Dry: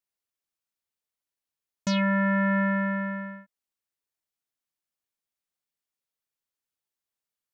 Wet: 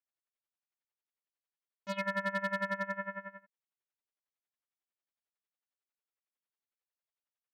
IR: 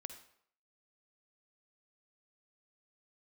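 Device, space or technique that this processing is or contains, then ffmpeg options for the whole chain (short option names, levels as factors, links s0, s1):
helicopter radio: -af "highpass=380,lowpass=3000,aeval=exprs='val(0)*pow(10,-19*(0.5-0.5*cos(2*PI*11*n/s))/20)':c=same,asoftclip=type=hard:threshold=0.0596"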